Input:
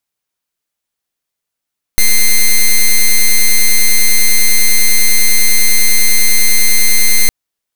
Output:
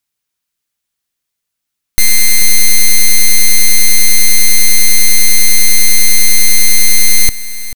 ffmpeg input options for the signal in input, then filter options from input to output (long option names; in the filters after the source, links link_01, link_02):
-f lavfi -i "aevalsrc='0.473*(2*lt(mod(2090*t,1),0.06)-1)':duration=5.31:sample_rate=44100"
-filter_complex "[0:a]equalizer=frequency=610:width_type=o:width=2.1:gain=-6.5,asplit=2[link_01][link_02];[link_02]volume=13.5dB,asoftclip=hard,volume=-13.5dB,volume=-5.5dB[link_03];[link_01][link_03]amix=inputs=2:normalize=0,aecho=1:1:438:0.188"